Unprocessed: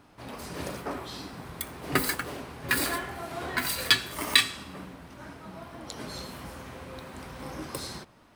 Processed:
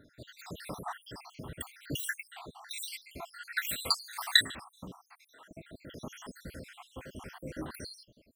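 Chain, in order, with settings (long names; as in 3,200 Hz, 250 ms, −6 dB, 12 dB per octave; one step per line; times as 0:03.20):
time-frequency cells dropped at random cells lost 75%
0:02.07–0:03.09: high-shelf EQ 6,700 Hz −4.5 dB
0:04.95–0:05.51: high-pass filter 850 Hz 12 dB per octave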